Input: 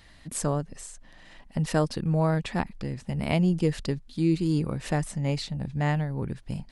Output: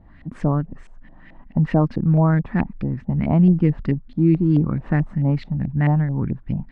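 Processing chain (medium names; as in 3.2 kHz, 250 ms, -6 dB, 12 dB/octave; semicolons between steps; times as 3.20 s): resonant low shelf 360 Hz +7.5 dB, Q 1.5; LFO low-pass saw up 4.6 Hz 620–2400 Hz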